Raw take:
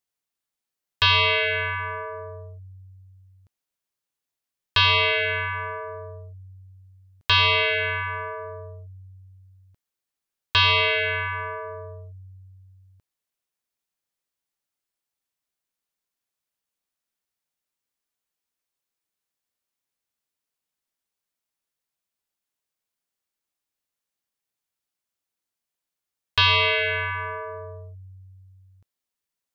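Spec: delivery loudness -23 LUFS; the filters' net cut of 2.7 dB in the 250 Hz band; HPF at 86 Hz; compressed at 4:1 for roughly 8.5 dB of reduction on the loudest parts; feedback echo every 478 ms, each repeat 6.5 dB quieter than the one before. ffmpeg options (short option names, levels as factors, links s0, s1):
-af "highpass=86,equalizer=f=250:t=o:g=-6.5,acompressor=threshold=0.0501:ratio=4,aecho=1:1:478|956|1434|1912|2390|2868:0.473|0.222|0.105|0.0491|0.0231|0.0109,volume=1.78"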